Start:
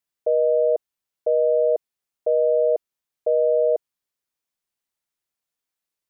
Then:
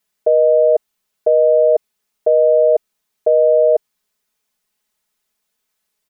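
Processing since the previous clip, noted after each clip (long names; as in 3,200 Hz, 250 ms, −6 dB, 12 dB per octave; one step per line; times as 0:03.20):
comb filter 4.7 ms, depth 88%
in parallel at −0.5 dB: compressor whose output falls as the input rises −19 dBFS, ratio −0.5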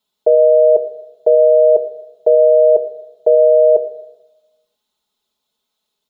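convolution reverb RT60 1.1 s, pre-delay 3 ms, DRR 8.5 dB
level −5.5 dB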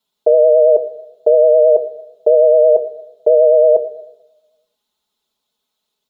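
pitch vibrato 9.1 Hz 44 cents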